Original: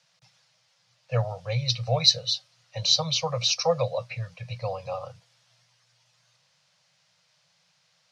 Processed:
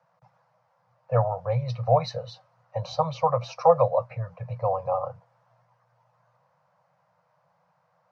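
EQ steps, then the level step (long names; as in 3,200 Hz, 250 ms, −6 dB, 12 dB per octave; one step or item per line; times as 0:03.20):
dynamic equaliser 280 Hz, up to −7 dB, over −41 dBFS, Q 0.8
dynamic equaliser 2,700 Hz, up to +3 dB, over −37 dBFS, Q 0.71
drawn EQ curve 150 Hz 0 dB, 1,000 Hz +8 dB, 3,400 Hz −25 dB
+3.0 dB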